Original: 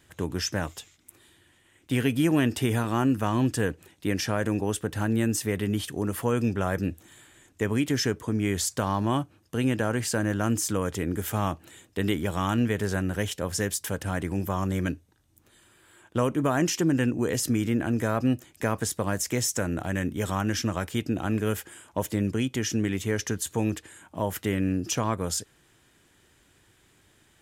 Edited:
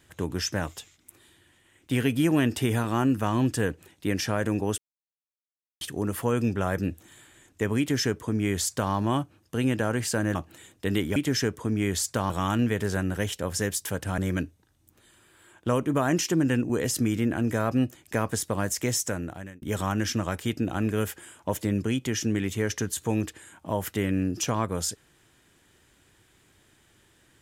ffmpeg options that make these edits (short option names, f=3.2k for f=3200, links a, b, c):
-filter_complex "[0:a]asplit=8[a][b][c][d][e][f][g][h];[a]atrim=end=4.78,asetpts=PTS-STARTPTS,afade=t=out:st=4.776:d=0.004:c=hsin[i];[b]atrim=start=4.78:end=5.81,asetpts=PTS-STARTPTS,volume=0[j];[c]atrim=start=5.81:end=10.352,asetpts=PTS-STARTPTS,afade=t=in:d=0.004:c=hsin[k];[d]atrim=start=11.478:end=12.292[l];[e]atrim=start=7.788:end=8.932[m];[f]atrim=start=12.288:end=14.172[n];[g]atrim=start=14.668:end=20.11,asetpts=PTS-STARTPTS,afade=t=out:st=4.802:d=0.64[o];[h]atrim=start=20.11,asetpts=PTS-STARTPTS,afade=t=in:d=0.004:c=hsin[p];[i][j][k]concat=n=3:v=0:a=1[q];[q][l]acrossfade=d=0.004:c1=hsin:c2=hsin[r];[r][m]acrossfade=d=0.004:c1=hsin:c2=hsin[s];[s][n]acrossfade=d=0.004:c1=hsin:c2=hsin[t];[o][p]concat=n=2:v=0:a=1[u];[t][u]acrossfade=d=0.004:c1=hsin:c2=hsin"